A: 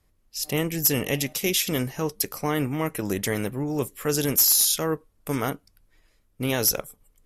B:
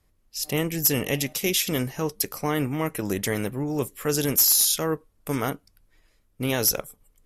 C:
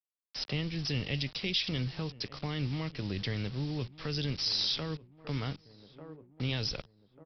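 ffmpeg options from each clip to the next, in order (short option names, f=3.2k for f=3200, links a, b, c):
-af anull
-filter_complex "[0:a]aresample=11025,acrusher=bits=6:mix=0:aa=0.000001,aresample=44100,asplit=2[a][b];[b]adelay=1193,lowpass=f=1.1k:p=1,volume=-20.5dB,asplit=2[c][d];[d]adelay=1193,lowpass=f=1.1k:p=1,volume=0.5,asplit=2[e][f];[f]adelay=1193,lowpass=f=1.1k:p=1,volume=0.5,asplit=2[g][h];[h]adelay=1193,lowpass=f=1.1k:p=1,volume=0.5[i];[a][c][e][g][i]amix=inputs=5:normalize=0,acrossover=split=160|3000[j][k][l];[k]acompressor=threshold=-44dB:ratio=3[m];[j][m][l]amix=inputs=3:normalize=0"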